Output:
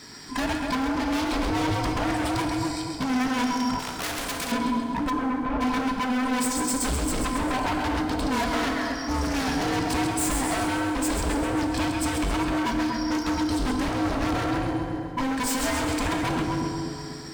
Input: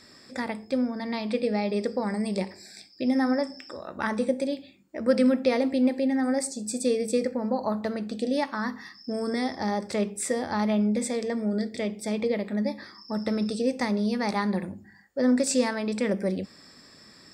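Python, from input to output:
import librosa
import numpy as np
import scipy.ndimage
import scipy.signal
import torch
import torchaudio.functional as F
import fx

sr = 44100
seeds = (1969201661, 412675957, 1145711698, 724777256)

y = fx.band_invert(x, sr, width_hz=500)
y = fx.low_shelf(y, sr, hz=340.0, db=11.5, at=(13.63, 14.51))
y = fx.rider(y, sr, range_db=3, speed_s=0.5)
y = np.clip(10.0 ** (24.5 / 20.0) * y, -1.0, 1.0) / 10.0 ** (24.5 / 20.0)
y = fx.echo_split(y, sr, split_hz=980.0, low_ms=242, high_ms=133, feedback_pct=52, wet_db=-6.0)
y = fx.leveller(y, sr, passes=1)
y = 10.0 ** (-24.0 / 20.0) * (np.abs((y / 10.0 ** (-24.0 / 20.0) + 3.0) % 4.0 - 2.0) - 1.0)
y = fx.lowpass(y, sr, hz=1300.0, slope=12, at=(5.09, 5.6), fade=0.02)
y = fx.rev_fdn(y, sr, rt60_s=2.5, lf_ratio=1.0, hf_ratio=0.7, size_ms=13.0, drr_db=5.0)
y = fx.spectral_comp(y, sr, ratio=2.0, at=(3.79, 4.52))
y = y * librosa.db_to_amplitude(2.0)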